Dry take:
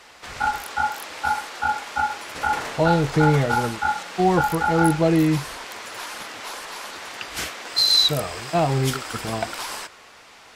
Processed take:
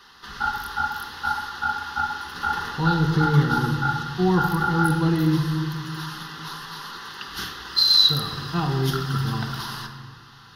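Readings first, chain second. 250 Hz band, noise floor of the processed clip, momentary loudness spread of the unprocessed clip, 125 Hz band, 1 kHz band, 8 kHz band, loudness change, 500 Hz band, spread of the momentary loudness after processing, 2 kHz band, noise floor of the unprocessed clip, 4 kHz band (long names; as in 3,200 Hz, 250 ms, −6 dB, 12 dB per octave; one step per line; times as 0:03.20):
−0.5 dB, −47 dBFS, 15 LU, +2.0 dB, −3.0 dB, −7.5 dB, −0.5 dB, −7.0 dB, 15 LU, −1.0 dB, −48 dBFS, +1.0 dB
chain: phaser with its sweep stopped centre 2,300 Hz, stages 6
rectangular room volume 2,000 cubic metres, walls mixed, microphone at 1.2 metres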